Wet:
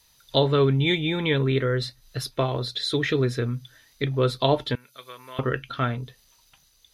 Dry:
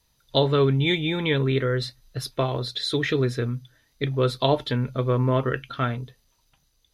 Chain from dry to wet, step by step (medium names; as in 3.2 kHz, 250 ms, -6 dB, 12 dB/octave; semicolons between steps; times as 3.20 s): 4.75–5.39 s: differentiator; tape noise reduction on one side only encoder only